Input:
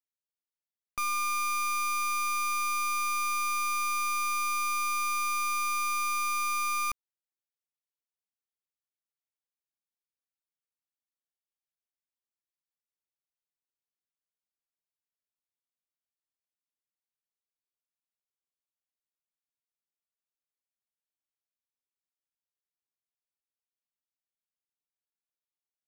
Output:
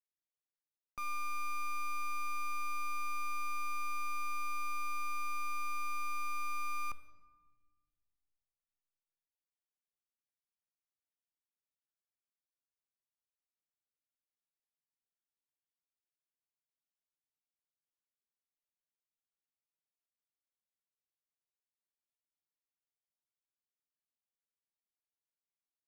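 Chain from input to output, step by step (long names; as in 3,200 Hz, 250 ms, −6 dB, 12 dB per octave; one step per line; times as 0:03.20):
high-shelf EQ 2,500 Hz −9.5 dB
convolution reverb RT60 1.4 s, pre-delay 7 ms, DRR 11 dB
level −7.5 dB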